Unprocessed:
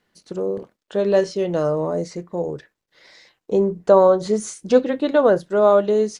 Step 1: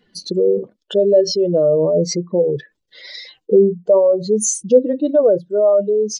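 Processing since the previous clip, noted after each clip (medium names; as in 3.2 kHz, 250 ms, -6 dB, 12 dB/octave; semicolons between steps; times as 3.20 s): spectral contrast enhancement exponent 2.1; resonant high shelf 2.4 kHz +9 dB, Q 1.5; gain riding within 5 dB 0.5 s; trim +4.5 dB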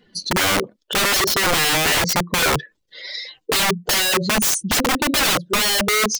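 integer overflow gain 16.5 dB; trim +3.5 dB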